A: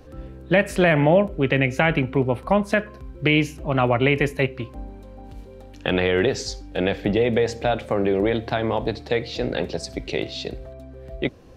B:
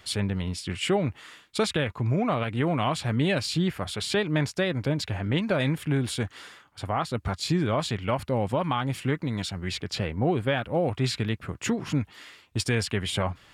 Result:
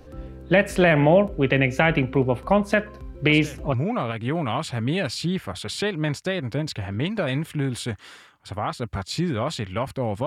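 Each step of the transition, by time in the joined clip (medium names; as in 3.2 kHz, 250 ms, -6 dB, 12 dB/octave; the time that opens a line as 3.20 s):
A
3.29 s: add B from 1.61 s 0.45 s -12.5 dB
3.74 s: go over to B from 2.06 s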